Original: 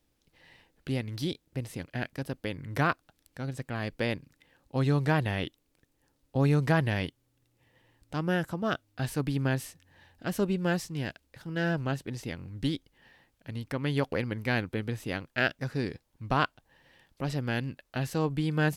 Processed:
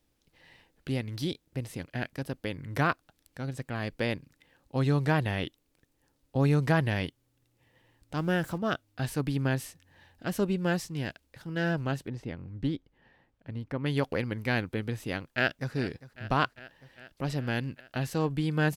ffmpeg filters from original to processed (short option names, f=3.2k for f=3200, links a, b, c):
-filter_complex "[0:a]asettb=1/sr,asplit=3[a][b][c];[a]atrim=end=8.174[d];[b]atrim=start=8.17:end=8.58,asetpts=PTS-STARTPTS,afade=t=in:d=0.004:c=qsin,afade=t=out:st=0.406:d=0.004:c=qsin,aeval=exprs='val(0)+0.5*0.00596*sgn(val(0))':c=same[e];[c]atrim=start=8.576[f];[d][e]acrossfade=d=0.004:c1=hsin:c2=qsin[g];[g][f]acrossfade=d=0.004:c1=qsin:c2=hsin,asettb=1/sr,asplit=3[h][i][j];[h]atrim=end=12.084[k];[i]atrim=start=12.08:end=13.86,asetpts=PTS-STARTPTS,afade=t=in:d=0.004:c=qsin,afade=t=out:st=1.776:d=0.004:c=qsin,lowpass=f=1.3k:p=1[l];[j]atrim=start=13.856[m];[k][l]acrossfade=d=0.004:c1=hsin:c2=qsin[n];[n][m]acrossfade=d=0.004:c1=qsin:c2=hsin,asplit=2[o][p];[p]afade=t=in:st=15.32:d=0.01,afade=t=out:st=15.73:d=0.01,aecho=0:1:400|800|1200|1600|2000|2400|2800|3200|3600|4000:0.149624|0.112218|0.0841633|0.0631224|0.0473418|0.0355064|0.0266298|0.0199723|0.0149793|0.0112344[q];[o][q]amix=inputs=2:normalize=0"